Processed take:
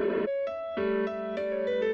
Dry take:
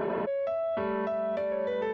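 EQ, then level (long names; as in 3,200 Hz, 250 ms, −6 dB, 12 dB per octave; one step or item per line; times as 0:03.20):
phaser with its sweep stopped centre 330 Hz, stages 4
+5.5 dB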